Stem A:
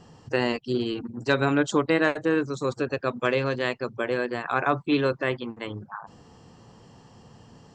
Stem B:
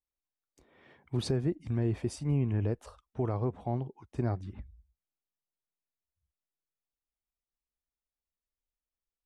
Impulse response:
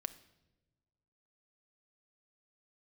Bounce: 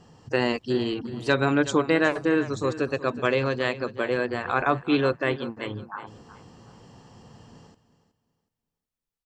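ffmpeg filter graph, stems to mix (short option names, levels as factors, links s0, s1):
-filter_complex "[0:a]dynaudnorm=f=170:g=3:m=1.5,volume=0.75,asplit=3[s0][s1][s2];[s1]volume=0.178[s3];[1:a]acompressor=threshold=0.0141:ratio=6,volume=1.26[s4];[s2]apad=whole_len=412529[s5];[s4][s5]sidechaincompress=threshold=0.0398:ratio=8:attack=16:release=290[s6];[s3]aecho=0:1:370|740|1110|1480:1|0.26|0.0676|0.0176[s7];[s0][s6][s7]amix=inputs=3:normalize=0"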